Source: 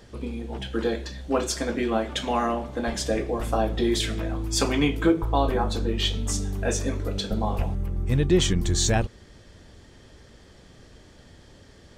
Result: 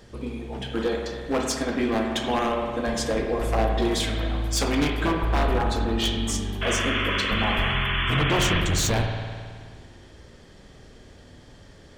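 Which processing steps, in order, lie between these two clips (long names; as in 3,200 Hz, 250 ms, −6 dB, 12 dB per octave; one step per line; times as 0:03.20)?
wave folding −17.5 dBFS
sound drawn into the spectrogram noise, 0:06.61–0:08.61, 960–3,500 Hz −29 dBFS
spring reverb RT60 1.9 s, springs 53 ms, chirp 50 ms, DRR 2.5 dB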